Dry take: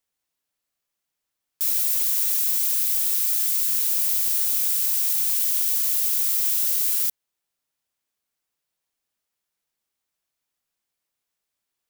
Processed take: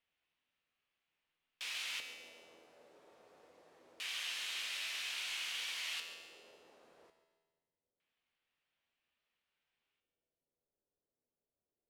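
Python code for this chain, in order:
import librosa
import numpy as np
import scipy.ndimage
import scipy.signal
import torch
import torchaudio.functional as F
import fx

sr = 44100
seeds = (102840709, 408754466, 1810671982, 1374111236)

p1 = fx.filter_lfo_lowpass(x, sr, shape='square', hz=0.25, low_hz=480.0, high_hz=2800.0, q=2.2)
p2 = fx.comb_fb(p1, sr, f0_hz=82.0, decay_s=1.5, harmonics='all', damping=0.0, mix_pct=80)
p3 = p2 + fx.echo_feedback(p2, sr, ms=142, feedback_pct=38, wet_db=-14.0, dry=0)
y = F.gain(torch.from_numpy(p3), 9.0).numpy()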